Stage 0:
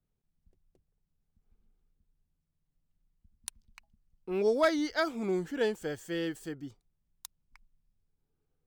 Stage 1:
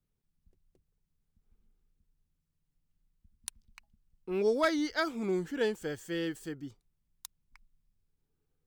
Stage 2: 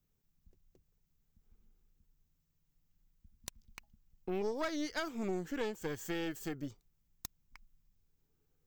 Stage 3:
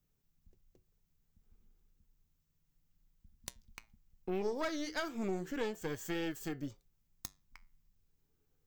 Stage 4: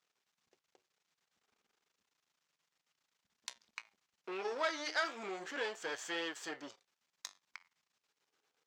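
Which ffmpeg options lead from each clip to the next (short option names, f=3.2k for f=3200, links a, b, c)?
-af "equalizer=f=680:w=2.3:g=-4"
-af "acompressor=threshold=-38dB:ratio=4,aexciter=amount=1.3:drive=2.6:freq=5.7k,aeval=exprs='(tanh(50.1*val(0)+0.75)-tanh(0.75))/50.1':c=same,volume=6.5dB"
-af "flanger=delay=6.4:depth=5.7:regen=-79:speed=0.32:shape=triangular,volume=4.5dB"
-af "aeval=exprs='if(lt(val(0),0),0.251*val(0),val(0))':c=same,highpass=740,lowpass=5.4k,volume=12.5dB"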